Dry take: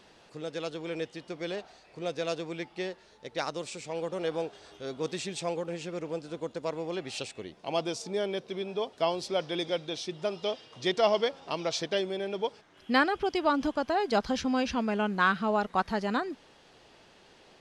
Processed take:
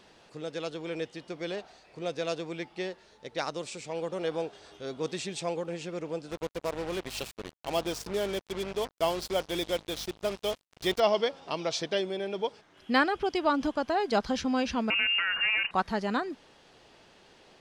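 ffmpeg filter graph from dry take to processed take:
-filter_complex "[0:a]asettb=1/sr,asplit=3[s0][s1][s2];[s0]atrim=end=6.314[s3];[s1]atrim=start=6.31:end=11,asetpts=PTS-STARTPTS,afade=t=in:d=0.004:c=qsin,afade=t=out:st=4.686:d=0.004:c=qsin,aeval=exprs='val(0)+0.00355*(sin(2*PI*50*n/s)+sin(2*PI*2*50*n/s)/2+sin(2*PI*3*50*n/s)/3+sin(2*PI*4*50*n/s)/4+sin(2*PI*5*50*n/s)/5)':c=same,acrusher=bits=5:mix=0:aa=0.5[s4];[s2]atrim=start=10.996[s5];[s3][s4]acrossfade=d=0.004:c1=hsin:c2=qsin[s6];[s6][s5]acrossfade=d=0.004:c1=qsin:c2=hsin,asettb=1/sr,asplit=3[s7][s8][s9];[s7]atrim=end=14.904[s10];[s8]atrim=start=14.9:end=15.71,asetpts=PTS-STARTPTS,afade=t=in:d=0.004:c=qsin,afade=t=out:st=0.806:d=0.004:c=qsin,acompressor=threshold=0.0251:ratio=8:attack=3.2:release=140:knee=1:detection=peak,aeval=exprs='0.0668*sin(PI/2*2.24*val(0)/0.0668)':c=same,lowpass=f=2600:t=q:w=0.5098,lowpass=f=2600:t=q:w=0.6013,lowpass=f=2600:t=q:w=0.9,lowpass=f=2600:t=q:w=2.563,afreqshift=-3000[s11];[s9]atrim=start=15.706[s12];[s10][s11]acrossfade=d=0.004:c1=hsin:c2=qsin[s13];[s13][s12]acrossfade=d=0.004:c1=qsin:c2=hsin"

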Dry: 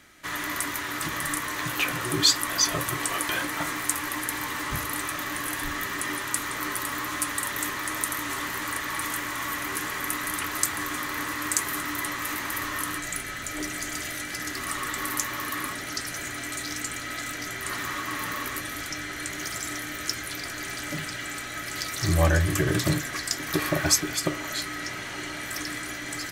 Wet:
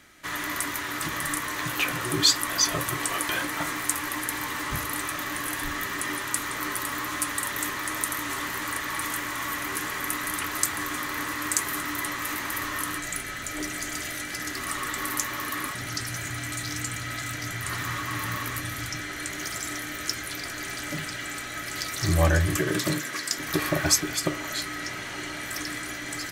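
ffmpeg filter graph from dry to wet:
-filter_complex "[0:a]asettb=1/sr,asplit=3[s0][s1][s2];[s0]atrim=end=15.714[s3];[s1]atrim=start=15.71:end=19,asetpts=PTS-STARTPTS,afade=t=in:d=0.004:c=qsin,afade=t=out:st=3.286:d=0.004:c=qsin,equalizer=f=110:w=1.6:g=12,acrossover=split=410[s4][s5];[s4]adelay=30[s6];[s6][s5]amix=inputs=2:normalize=0,atrim=end_sample=145089[s7];[s2]atrim=start=18.996[s8];[s3][s7]acrossfade=d=0.004:c1=hsin:c2=qsin[s9];[s9][s8]acrossfade=d=0.004:c1=qsin:c2=hsin,asettb=1/sr,asplit=3[s10][s11][s12];[s10]atrim=end=22.564[s13];[s11]atrim=start=22.56:end=23.38,asetpts=PTS-STARTPTS,afade=t=in:d=0.004:c=qsin,afade=t=out:st=0.816:d=0.004:c=qsin,highpass=180,bandreject=f=750:w=6.3[s14];[s12]atrim=start=23.376[s15];[s13][s14]acrossfade=d=0.004:c1=hsin:c2=qsin[s16];[s16][s15]acrossfade=d=0.004:c1=qsin:c2=hsin"

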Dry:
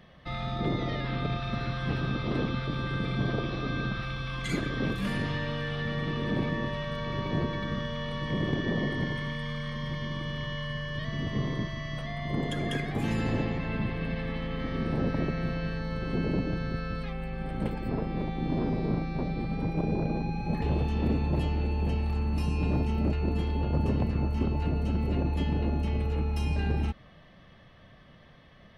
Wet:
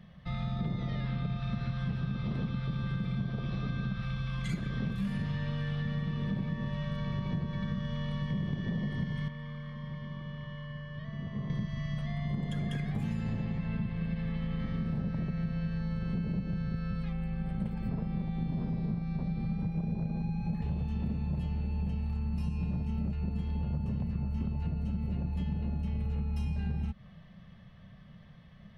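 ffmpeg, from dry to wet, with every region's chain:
-filter_complex "[0:a]asettb=1/sr,asplit=3[s0][s1][s2];[s0]atrim=end=9.284[s3];[s1]atrim=start=9.28:end=11.5,asetpts=PTS-STARTPTS,afade=t=in:d=0.004:c=qsin,afade=t=out:st=2.216:d=0.004:c=qsin,lowpass=f=1100:p=1,lowshelf=f=300:g=-11.5[s4];[s2]atrim=start=11.496[s5];[s3][s4]acrossfade=d=0.004:c1=hsin:c2=qsin[s6];[s6][s5]acrossfade=d=0.004:c1=qsin:c2=hsin,lowshelf=f=240:t=q:w=3:g=6.5,acompressor=threshold=0.0631:ratio=6,volume=0.531"

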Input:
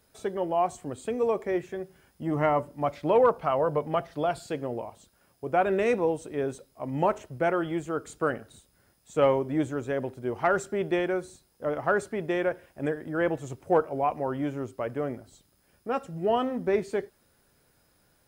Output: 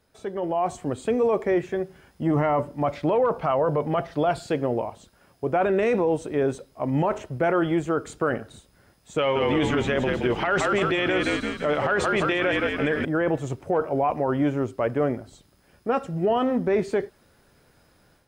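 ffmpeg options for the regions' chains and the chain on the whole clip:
-filter_complex "[0:a]asettb=1/sr,asplit=3[s0][s1][s2];[s0]atrim=end=9.184[s3];[s1]atrim=start=9.18:end=13.05,asetpts=PTS-STARTPTS,afade=t=in:d=0.004:c=qsin,afade=t=out:st=3.866:d=0.004:c=qsin,equalizer=f=3100:w=0.75:g=15,asplit=8[s4][s5][s6][s7][s8][s9][s10][s11];[s5]adelay=170,afreqshift=-45,volume=0.398[s12];[s6]adelay=340,afreqshift=-90,volume=0.219[s13];[s7]adelay=510,afreqshift=-135,volume=0.12[s14];[s8]adelay=680,afreqshift=-180,volume=0.0661[s15];[s9]adelay=850,afreqshift=-225,volume=0.0363[s16];[s10]adelay=1020,afreqshift=-270,volume=0.02[s17];[s11]adelay=1190,afreqshift=-315,volume=0.011[s18];[s4][s12][s13][s14][s15][s16][s17][s18]amix=inputs=8:normalize=0,atrim=end_sample=170667[s19];[s2]atrim=start=13.046[s20];[s3][s19]acrossfade=d=0.004:c1=hsin:c2=qsin[s21];[s21][s20]acrossfade=d=0.004:c1=qsin:c2=hsin,highshelf=f=7500:g=-11,alimiter=limit=0.075:level=0:latency=1:release=13,dynaudnorm=f=330:g=3:m=2.51"

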